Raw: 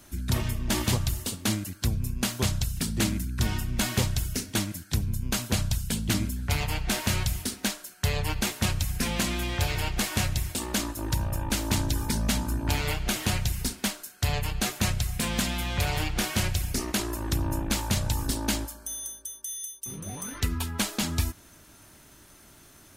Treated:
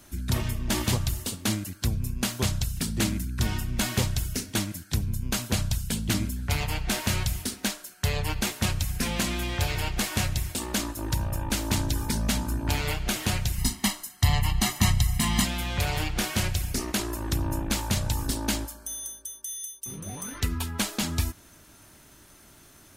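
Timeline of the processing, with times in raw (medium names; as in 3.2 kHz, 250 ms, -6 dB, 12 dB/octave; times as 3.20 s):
13.58–15.45 s: comb 1 ms, depth 98%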